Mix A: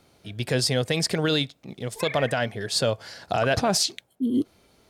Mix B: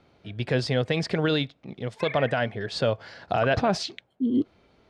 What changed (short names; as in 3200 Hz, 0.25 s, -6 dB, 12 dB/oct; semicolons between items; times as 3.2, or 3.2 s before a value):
background: add HPF 1200 Hz; master: add LPF 3100 Hz 12 dB/oct